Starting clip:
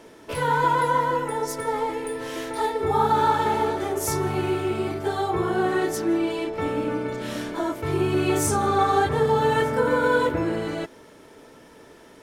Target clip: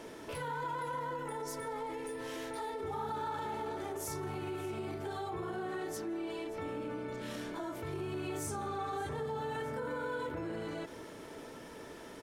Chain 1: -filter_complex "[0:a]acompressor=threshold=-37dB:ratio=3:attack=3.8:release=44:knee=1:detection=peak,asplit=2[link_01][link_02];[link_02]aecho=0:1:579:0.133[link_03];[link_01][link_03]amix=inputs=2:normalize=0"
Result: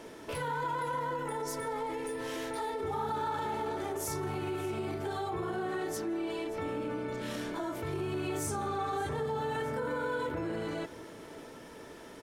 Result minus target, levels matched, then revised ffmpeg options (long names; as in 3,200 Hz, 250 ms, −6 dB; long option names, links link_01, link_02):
downward compressor: peak gain reduction −4 dB
-filter_complex "[0:a]acompressor=threshold=-43dB:ratio=3:attack=3.8:release=44:knee=1:detection=peak,asplit=2[link_01][link_02];[link_02]aecho=0:1:579:0.133[link_03];[link_01][link_03]amix=inputs=2:normalize=0"